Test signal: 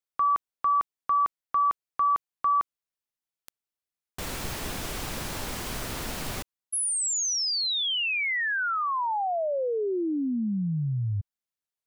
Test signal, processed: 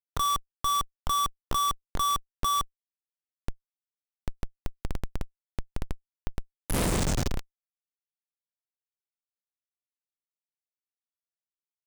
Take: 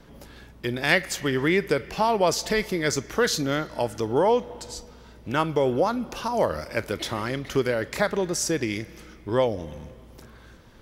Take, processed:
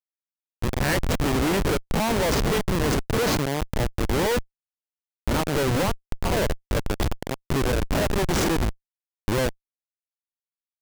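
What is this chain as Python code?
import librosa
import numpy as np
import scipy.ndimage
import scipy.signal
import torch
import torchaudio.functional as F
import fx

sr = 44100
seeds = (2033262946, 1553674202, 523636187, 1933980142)

y = fx.spec_swells(x, sr, rise_s=0.48)
y = fx.schmitt(y, sr, flips_db=-21.0)
y = y * 10.0 ** (3.0 / 20.0)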